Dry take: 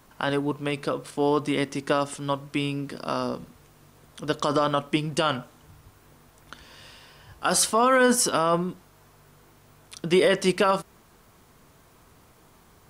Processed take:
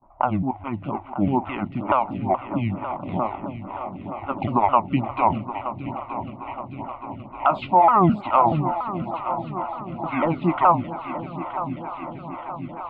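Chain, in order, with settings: repeated pitch sweeps -8 st, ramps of 0.213 s; gate with hold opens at -48 dBFS; LPF 2200 Hz 24 dB/oct; bell 640 Hz +6 dB 1.3 oct; fixed phaser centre 1700 Hz, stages 6; low-pass opened by the level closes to 670 Hz, open at -26.5 dBFS; multi-head echo 0.308 s, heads second and third, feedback 75%, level -12 dB; photocell phaser 2.2 Hz; gain +8 dB

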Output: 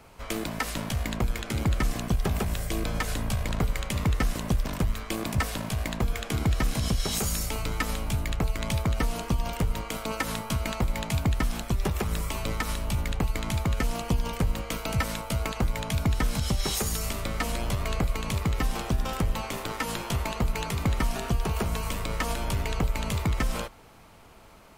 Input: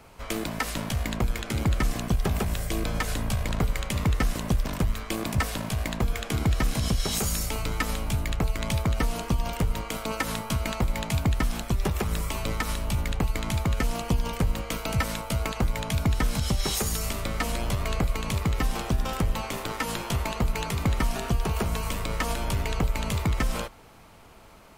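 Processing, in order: 15.54–16.03 added noise brown -54 dBFS; gain -1 dB

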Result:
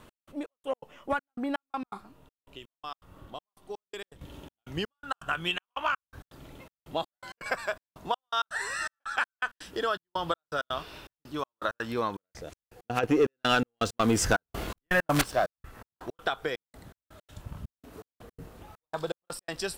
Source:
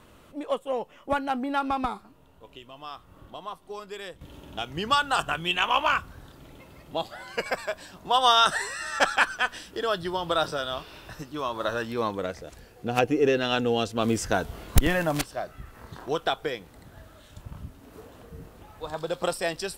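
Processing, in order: dynamic EQ 1400 Hz, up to +7 dB, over -39 dBFS, Q 1.7; compressor 6:1, threshold -25 dBFS, peak gain reduction 14.5 dB; 13.03–15.49 sample leveller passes 2; step gate "x..xx..x.xxx" 164 bpm -60 dB

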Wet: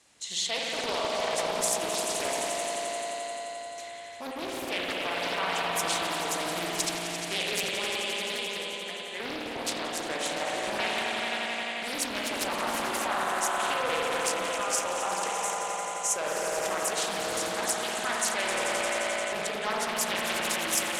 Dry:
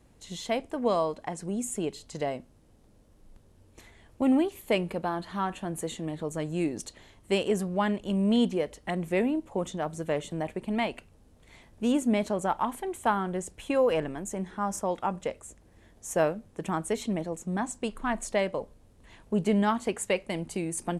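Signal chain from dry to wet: 7.78–9.2 resonator 400 Hz, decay 0.68 s, mix 80%; on a send: swelling echo 87 ms, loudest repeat 5, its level -12 dB; on the sum: limiter -22.5 dBFS, peak gain reduction 10.5 dB; weighting filter ITU-R 468; spring tank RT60 3.2 s, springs 52 ms, chirp 25 ms, DRR -3 dB; Doppler distortion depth 0.65 ms

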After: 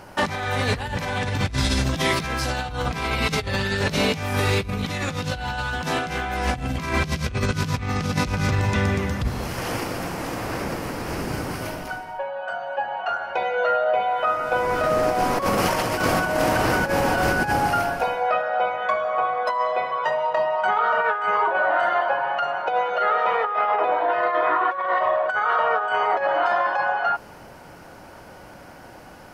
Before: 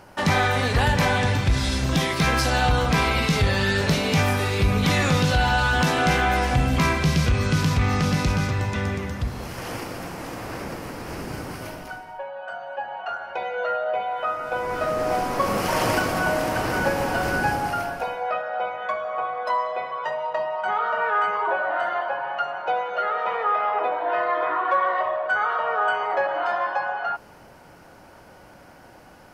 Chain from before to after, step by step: negative-ratio compressor -24 dBFS, ratio -0.5; gain +2.5 dB

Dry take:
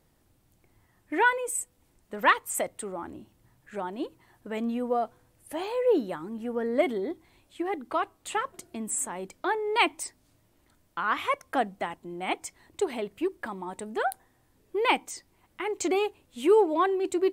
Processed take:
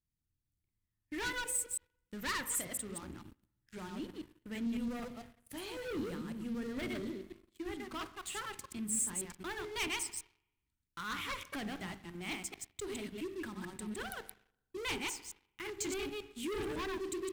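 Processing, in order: reverse delay 0.111 s, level -3 dB; low shelf 340 Hz +4.5 dB; de-hum 49.07 Hz, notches 19; sample leveller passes 2; spring tank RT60 1.1 s, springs 42/57 ms, chirp 80 ms, DRR 16 dB; sample leveller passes 2; passive tone stack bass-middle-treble 6-0-2; gain -3.5 dB

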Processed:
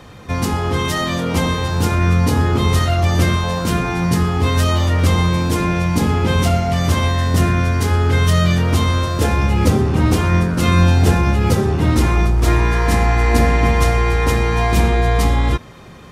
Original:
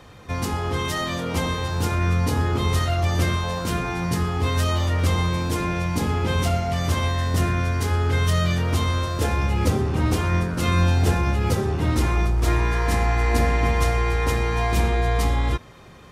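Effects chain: bell 200 Hz +3.5 dB 1.1 oct; gain +5.5 dB

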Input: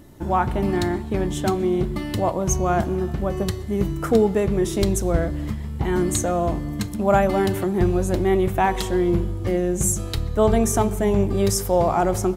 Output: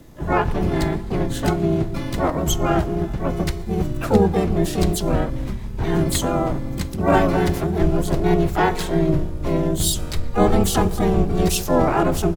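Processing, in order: frequency shift -30 Hz; harmoniser -12 st 0 dB, +3 st -2 dB, +12 st -7 dB; gain -3 dB

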